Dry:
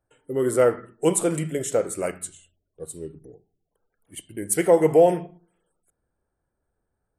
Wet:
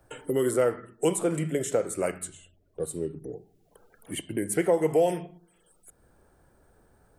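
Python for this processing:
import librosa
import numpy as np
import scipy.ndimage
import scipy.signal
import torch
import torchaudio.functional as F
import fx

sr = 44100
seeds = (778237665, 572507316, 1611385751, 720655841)

y = fx.band_squash(x, sr, depth_pct=70)
y = F.gain(torch.from_numpy(y), -3.0).numpy()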